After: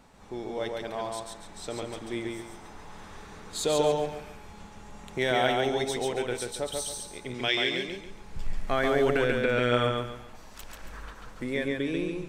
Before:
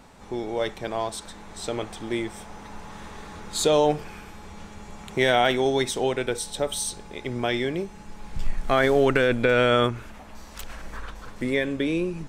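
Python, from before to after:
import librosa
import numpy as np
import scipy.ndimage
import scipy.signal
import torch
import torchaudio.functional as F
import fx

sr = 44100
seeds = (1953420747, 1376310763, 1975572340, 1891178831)

y = fx.weighting(x, sr, curve='D', at=(7.34, 7.87))
y = fx.echo_feedback(y, sr, ms=139, feedback_pct=31, wet_db=-3)
y = y * librosa.db_to_amplitude(-6.5)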